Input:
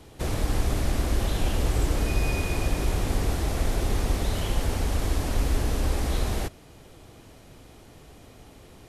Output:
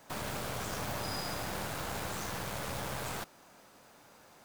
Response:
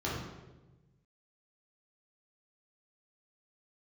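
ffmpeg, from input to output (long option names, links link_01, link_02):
-af "highpass=frequency=240:poles=1,asetrate=88200,aresample=44100,aeval=exprs='0.119*(cos(1*acos(clip(val(0)/0.119,-1,1)))-cos(1*PI/2))+0.00944*(cos(8*acos(clip(val(0)/0.119,-1,1)))-cos(8*PI/2))':channel_layout=same,volume=-6dB"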